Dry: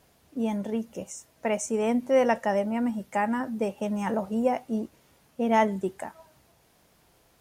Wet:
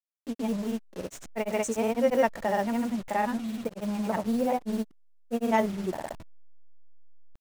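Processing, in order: level-crossing sampler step -36.5 dBFS; grains, spray 0.1 s, pitch spread up and down by 0 st

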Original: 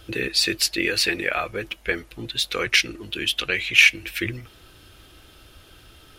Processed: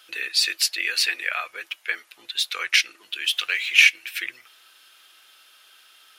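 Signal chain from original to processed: 3.24–3.74 G.711 law mismatch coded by mu; HPF 1200 Hz 12 dB/oct

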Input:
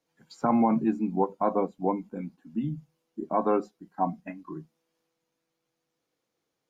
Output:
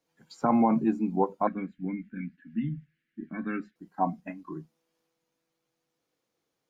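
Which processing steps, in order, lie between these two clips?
1.47–3.76 EQ curve 270 Hz 0 dB, 460 Hz -20 dB, 980 Hz -27 dB, 1700 Hz +14 dB, 5700 Hz -15 dB

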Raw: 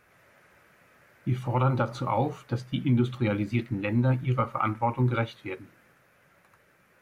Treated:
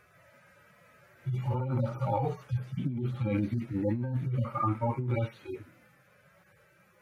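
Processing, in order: median-filter separation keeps harmonic; negative-ratio compressor -29 dBFS, ratio -1

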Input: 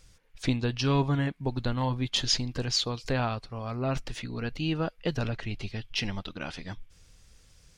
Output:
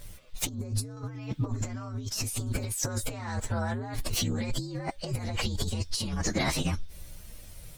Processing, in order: inharmonic rescaling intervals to 120%; 0.49–0.97 bell 2800 Hz -12 dB 2.9 oct; negative-ratio compressor -41 dBFS, ratio -1; gain +8.5 dB

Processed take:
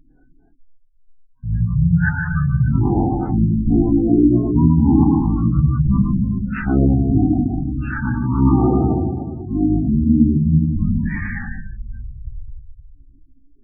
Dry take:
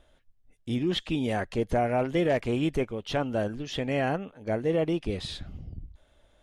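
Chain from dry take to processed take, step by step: spring tank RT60 1 s, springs 35/49 ms, chirp 70 ms, DRR -2 dB; spectral gate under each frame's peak -20 dB strong; wide varispeed 0.471×; gain +8 dB

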